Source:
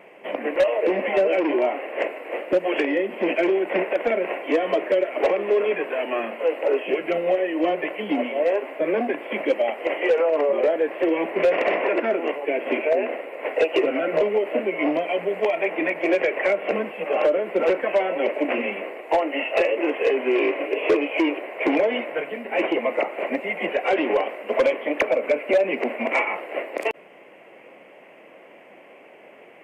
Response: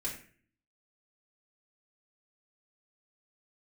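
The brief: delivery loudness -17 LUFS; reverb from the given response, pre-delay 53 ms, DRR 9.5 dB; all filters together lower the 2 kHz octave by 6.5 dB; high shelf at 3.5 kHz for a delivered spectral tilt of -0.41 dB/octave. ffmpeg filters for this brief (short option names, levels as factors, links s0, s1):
-filter_complex "[0:a]equalizer=f=2000:t=o:g=-6,highshelf=f=3500:g=-5.5,asplit=2[s0][s1];[1:a]atrim=start_sample=2205,adelay=53[s2];[s1][s2]afir=irnorm=-1:irlink=0,volume=0.266[s3];[s0][s3]amix=inputs=2:normalize=0,volume=2.11"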